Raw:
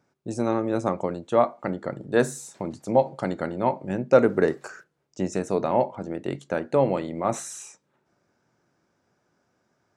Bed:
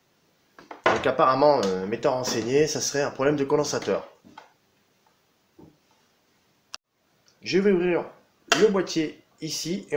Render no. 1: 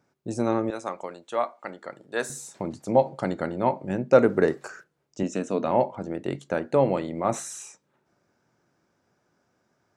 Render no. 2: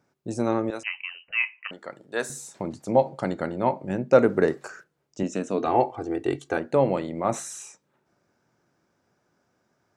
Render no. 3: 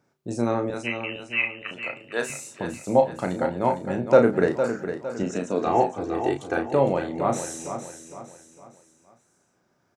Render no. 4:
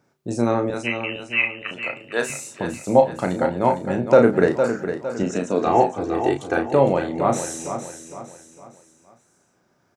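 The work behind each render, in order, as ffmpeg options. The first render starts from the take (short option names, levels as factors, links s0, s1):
-filter_complex "[0:a]asettb=1/sr,asplit=3[s0][s1][s2];[s0]atrim=end=0.704[s3];[s1]atrim=start=0.7:end=2.3,asetpts=PTS-STARTPTS,afade=t=in:d=0.004:c=qsin,afade=t=out:st=1.596:d=0.004:c=qsin,highpass=f=1200:p=1[s4];[s2]atrim=start=2.296[s5];[s3][s4]acrossfade=d=0.004:c1=hsin:c2=qsin[s6];[s6][s5]acrossfade=d=0.004:c1=qsin:c2=hsin,asettb=1/sr,asplit=3[s7][s8][s9];[s7]atrim=end=5.234[s10];[s8]atrim=start=5.23:end=5.67,asetpts=PTS-STARTPTS,afade=t=in:d=0.004:c=qsin,afade=t=out:st=0.436:d=0.004:c=qsin,highpass=190,equalizer=f=250:t=q:w=4:g=7,equalizer=f=390:t=q:w=4:g=-5,equalizer=f=830:t=q:w=4:g=-7,equalizer=f=2000:t=q:w=4:g=-4,equalizer=f=3000:t=q:w=4:g=8,equalizer=f=4800:t=q:w=4:g=-7,lowpass=f=8300:w=0.5412,lowpass=f=8300:w=1.3066[s11];[s9]atrim=start=5.666[s12];[s10][s11]acrossfade=d=0.004:c1=hsin:c2=qsin[s13];[s13][s12]acrossfade=d=0.004:c1=qsin:c2=hsin"
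-filter_complex "[0:a]asettb=1/sr,asplit=3[s0][s1][s2];[s0]atrim=end=0.834[s3];[s1]atrim=start=0.83:end=1.71,asetpts=PTS-STARTPTS,afade=t=in:d=0.004:c=qsin,afade=t=out:st=0.876:d=0.004:c=qsin,lowpass=f=2700:t=q:w=0.5098,lowpass=f=2700:t=q:w=0.6013,lowpass=f=2700:t=q:w=0.9,lowpass=f=2700:t=q:w=2.563,afreqshift=-3200[s4];[s2]atrim=start=1.706[s5];[s3][s4]acrossfade=d=0.004:c1=hsin:c2=qsin[s6];[s6][s5]acrossfade=d=0.004:c1=qsin:c2=hsin,asettb=1/sr,asplit=3[s7][s8][s9];[s7]atrim=end=5.584[s10];[s8]atrim=start=5.58:end=6.57,asetpts=PTS-STARTPTS,afade=t=in:d=0.004:c=qsin,afade=t=out:st=0.986:d=0.004:c=qsin,aecho=1:1:2.6:0.96,atrim=end_sample=43659[s11];[s9]atrim=start=6.566[s12];[s10][s11]acrossfade=d=0.004:c1=hsin:c2=qsin[s13];[s13][s12]acrossfade=d=0.004:c1=qsin:c2=hsin"
-filter_complex "[0:a]asplit=2[s0][s1];[s1]adelay=34,volume=0.473[s2];[s0][s2]amix=inputs=2:normalize=0,aecho=1:1:458|916|1374|1832:0.355|0.142|0.0568|0.0227"
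-af "volume=1.58,alimiter=limit=0.794:level=0:latency=1"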